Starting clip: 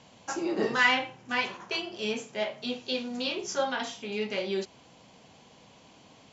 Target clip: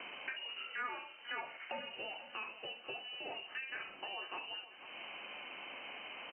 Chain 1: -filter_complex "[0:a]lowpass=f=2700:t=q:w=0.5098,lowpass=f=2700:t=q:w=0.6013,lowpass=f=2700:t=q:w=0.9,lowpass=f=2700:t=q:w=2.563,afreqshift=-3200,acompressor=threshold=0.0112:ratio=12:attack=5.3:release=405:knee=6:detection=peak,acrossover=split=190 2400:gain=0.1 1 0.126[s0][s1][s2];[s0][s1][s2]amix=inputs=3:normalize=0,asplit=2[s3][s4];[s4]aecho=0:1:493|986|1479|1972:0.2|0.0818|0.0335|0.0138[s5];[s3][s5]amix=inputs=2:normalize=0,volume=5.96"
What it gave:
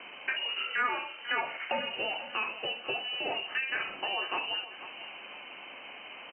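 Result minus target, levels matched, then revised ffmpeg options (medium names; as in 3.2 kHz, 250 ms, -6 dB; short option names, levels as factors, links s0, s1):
compression: peak gain reduction -11 dB
-filter_complex "[0:a]lowpass=f=2700:t=q:w=0.5098,lowpass=f=2700:t=q:w=0.6013,lowpass=f=2700:t=q:w=0.9,lowpass=f=2700:t=q:w=2.563,afreqshift=-3200,acompressor=threshold=0.00282:ratio=12:attack=5.3:release=405:knee=6:detection=peak,acrossover=split=190 2400:gain=0.1 1 0.126[s0][s1][s2];[s0][s1][s2]amix=inputs=3:normalize=0,asplit=2[s3][s4];[s4]aecho=0:1:493|986|1479|1972:0.2|0.0818|0.0335|0.0138[s5];[s3][s5]amix=inputs=2:normalize=0,volume=5.96"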